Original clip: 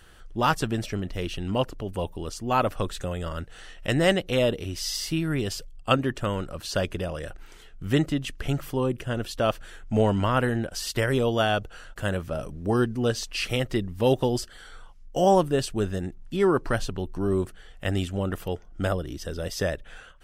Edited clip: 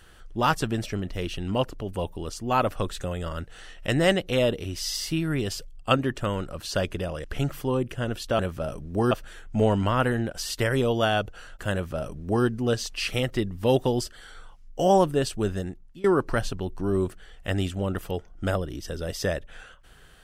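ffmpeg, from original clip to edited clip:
-filter_complex "[0:a]asplit=5[a][b][c][d][e];[a]atrim=end=7.242[f];[b]atrim=start=8.328:end=9.482[g];[c]atrim=start=12.098:end=12.822[h];[d]atrim=start=9.478:end=16.41,asetpts=PTS-STARTPTS,afade=t=out:st=6.462:d=0.47:silence=0.0841395[i];[e]atrim=start=16.41,asetpts=PTS-STARTPTS,afade=t=in:d=0.004:c=hsin:silence=0.0841395[j];[f][g]acrossfade=d=0.004:c1=hsin:c2=hsin[k];[k][h]acrossfade=d=0.004:c1=hsin:c2=hsin[l];[i][j]concat=n=2:v=0:a=1[m];[l][m]acrossfade=d=0.004:c1=hsin:c2=hsin"

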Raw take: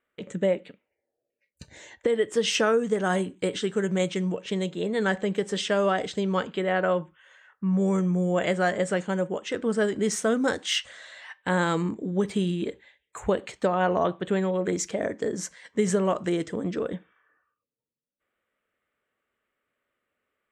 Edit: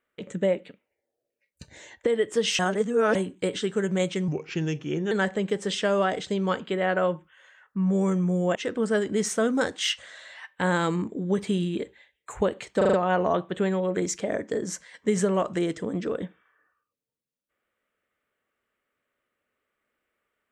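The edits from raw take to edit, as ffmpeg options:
-filter_complex "[0:a]asplit=10[a][b][c][d][e][f][g][h][i][j];[a]atrim=end=2.592[k];[b]atrim=start=2.588:end=3.152,asetpts=PTS-STARTPTS,areverse[l];[c]atrim=start=3.148:end=4.284[m];[d]atrim=start=4.28:end=4.98,asetpts=PTS-STARTPTS,asetrate=37044,aresample=44100[n];[e]atrim=start=4.976:end=8.422[o];[f]atrim=start=9.418:end=13.682[p];[g]atrim=start=13.638:end=13.682[q];[h]atrim=start=13.638:end=13.682[r];[i]atrim=start=13.638:end=13.682[s];[j]atrim=start=13.638[t];[k][l]acrossfade=d=0.004:c1=hsin:c2=hsin[u];[u][m]acrossfade=d=0.004:c1=hsin:c2=hsin[v];[v][n]acrossfade=d=0.004:c1=hsin:c2=hsin[w];[w][o]acrossfade=d=0.004:c1=hsin:c2=hsin[x];[x][p]acrossfade=d=0.004:c1=hsin:c2=hsin[y];[y][q]acrossfade=d=0.004:c1=hsin:c2=hsin[z];[z][r]acrossfade=d=0.004:c1=hsin:c2=hsin[aa];[aa][s]acrossfade=d=0.004:c1=hsin:c2=hsin[ab];[ab][t]acrossfade=d=0.004:c1=hsin:c2=hsin"

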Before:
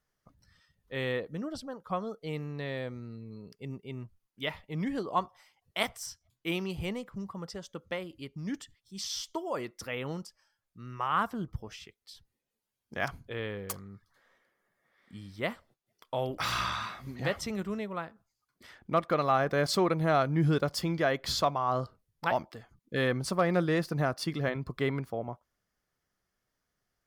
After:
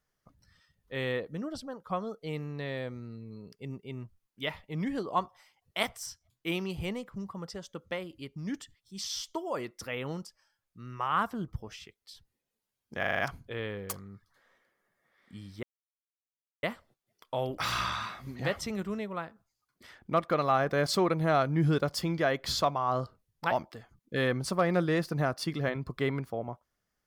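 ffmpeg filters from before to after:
-filter_complex "[0:a]asplit=7[a][b][c][d][e][f][g];[a]atrim=end=13.032[h];[b]atrim=start=12.988:end=13.032[i];[c]atrim=start=12.988:end=13.032[j];[d]atrim=start=12.988:end=13.032[k];[e]atrim=start=12.988:end=13.032[l];[f]atrim=start=12.988:end=15.43,asetpts=PTS-STARTPTS,afade=t=out:st=2.438:d=0.004:c=hsin,apad=pad_dur=1[m];[g]atrim=start=15.43,asetpts=PTS-STARTPTS,afade=t=in:d=0.004:c=hsin[n];[h][i]acrossfade=d=0.004:c1=hsin:c2=hsin[o];[o][j]acrossfade=d=0.004:c1=hsin:c2=hsin[p];[p][k]acrossfade=d=0.004:c1=hsin:c2=hsin[q];[q][l]acrossfade=d=0.004:c1=hsin:c2=hsin[r];[m][n]concat=n=2:v=0:a=1[s];[r][s]acrossfade=d=0.004:c1=hsin:c2=hsin"

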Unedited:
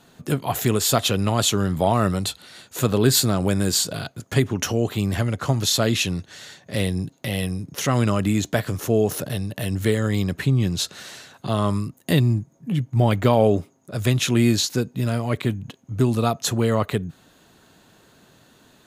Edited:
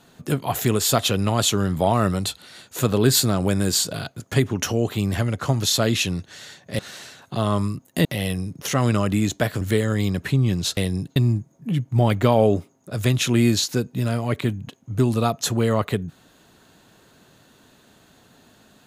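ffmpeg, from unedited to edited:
-filter_complex "[0:a]asplit=6[a][b][c][d][e][f];[a]atrim=end=6.792[g];[b]atrim=start=10.908:end=12.172[h];[c]atrim=start=7.178:end=8.742[i];[d]atrim=start=9.748:end=10.912[j];[e]atrim=start=6.788:end=7.182[k];[f]atrim=start=12.168[l];[g][h]acrossfade=d=0.004:c1=hsin:c2=hsin[m];[m][i]acrossfade=d=0.004:c1=hsin:c2=hsin[n];[n][j]acrossfade=d=0.004:c1=hsin:c2=hsin[o];[o][k]acrossfade=d=0.004:c1=hsin:c2=hsin[p];[p][l]acrossfade=d=0.004:c1=hsin:c2=hsin"

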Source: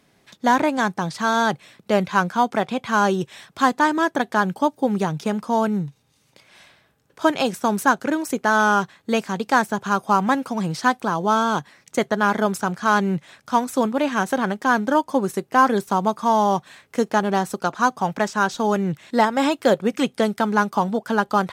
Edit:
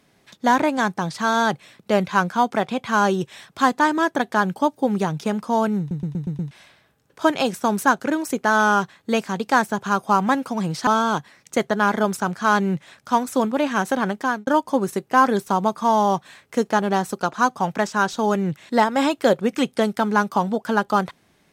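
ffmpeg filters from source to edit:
-filter_complex "[0:a]asplit=9[a][b][c][d][e][f][g][h][i];[a]atrim=end=5.912[j];[b]atrim=start=5.788:end=5.912[k];[c]atrim=start=5.788:end=5.912[l];[d]atrim=start=5.788:end=5.912[m];[e]atrim=start=5.788:end=5.912[n];[f]atrim=start=5.788:end=5.912[o];[g]atrim=start=6.508:end=10.872[p];[h]atrim=start=11.278:end=14.88,asetpts=PTS-STARTPTS,afade=t=out:st=3.322:d=0.28[q];[i]atrim=start=14.88,asetpts=PTS-STARTPTS,afade=t=in:d=0.004:c=hsin[r];[j][k]acrossfade=d=0.004:c1=hsin:c2=hsin[s];[s][l]acrossfade=d=0.004:c1=hsin:c2=hsin[t];[t][m]acrossfade=d=0.004:c1=hsin:c2=hsin[u];[u][n]acrossfade=d=0.004:c1=hsin:c2=hsin[v];[v][o]acrossfade=d=0.004:c1=hsin:c2=hsin[w];[w][p]acrossfade=d=0.004:c1=hsin:c2=hsin[x];[q][r]concat=n=2:v=0:a=1[y];[x][y]acrossfade=d=0.004:c1=hsin:c2=hsin"

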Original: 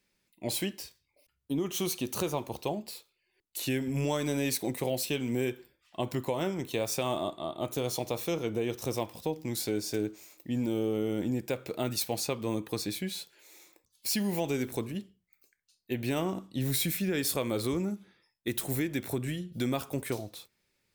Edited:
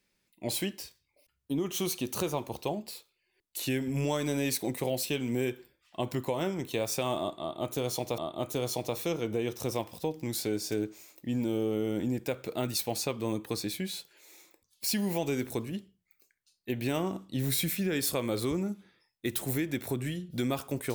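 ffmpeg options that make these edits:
-filter_complex "[0:a]asplit=2[a][b];[a]atrim=end=8.182[c];[b]atrim=start=7.398[d];[c][d]acrossfade=d=0.004:c1=hsin:c2=hsin"

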